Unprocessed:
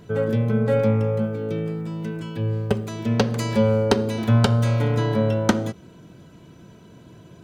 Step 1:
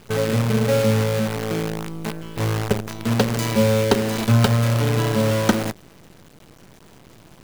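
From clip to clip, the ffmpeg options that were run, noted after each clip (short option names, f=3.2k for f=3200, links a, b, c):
-af "acrusher=bits=5:dc=4:mix=0:aa=0.000001,volume=1dB"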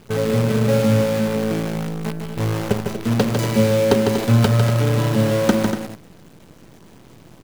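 -filter_complex "[0:a]equalizer=f=210:w=0.38:g=4.5,asplit=2[a][b];[b]aecho=0:1:151.6|239.1:0.501|0.316[c];[a][c]amix=inputs=2:normalize=0,volume=-2.5dB"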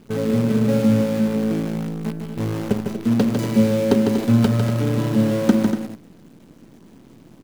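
-af "equalizer=f=250:t=o:w=1.1:g=10,volume=-6dB"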